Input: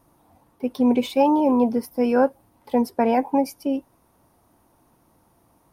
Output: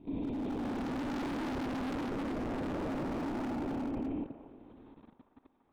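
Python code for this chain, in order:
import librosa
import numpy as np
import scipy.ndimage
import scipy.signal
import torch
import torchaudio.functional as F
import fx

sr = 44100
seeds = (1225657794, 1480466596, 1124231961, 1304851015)

y = fx.spec_blur(x, sr, span_ms=1010.0)
y = fx.lpc_vocoder(y, sr, seeds[0], excitation='whisper', order=16)
y = fx.peak_eq(y, sr, hz=260.0, db=15.0, octaves=0.61)
y = fx.notch(y, sr, hz=2900.0, q=16.0)
y = np.clip(10.0 ** (25.5 / 20.0) * y, -1.0, 1.0) / 10.0 ** (25.5 / 20.0)
y = fx.high_shelf(y, sr, hz=2300.0, db=9.5)
y = fx.level_steps(y, sr, step_db=19)
y = fx.echo_wet_bandpass(y, sr, ms=234, feedback_pct=39, hz=880.0, wet_db=-8)
y = fx.doppler_dist(y, sr, depth_ms=0.54, at=(0.73, 2.82))
y = y * 10.0 ** (2.5 / 20.0)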